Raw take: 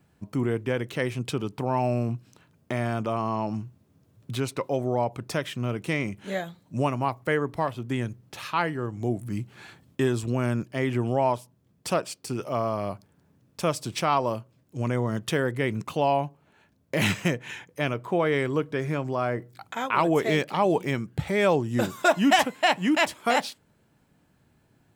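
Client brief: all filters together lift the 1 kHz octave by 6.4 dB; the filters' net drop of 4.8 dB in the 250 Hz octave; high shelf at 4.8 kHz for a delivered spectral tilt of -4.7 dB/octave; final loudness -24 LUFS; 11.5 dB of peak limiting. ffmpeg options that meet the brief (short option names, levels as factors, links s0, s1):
-af "equalizer=f=250:t=o:g=-7,equalizer=f=1000:t=o:g=8.5,highshelf=f=4800:g=6,volume=1.58,alimiter=limit=0.299:level=0:latency=1"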